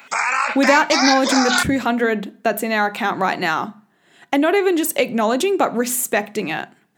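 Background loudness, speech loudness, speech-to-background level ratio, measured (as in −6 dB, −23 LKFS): −19.0 LKFS, −19.0 LKFS, 0.0 dB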